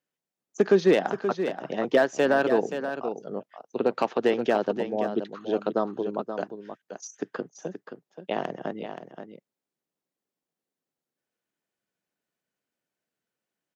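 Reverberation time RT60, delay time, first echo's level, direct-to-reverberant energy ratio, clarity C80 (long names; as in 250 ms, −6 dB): no reverb audible, 527 ms, −9.0 dB, no reverb audible, no reverb audible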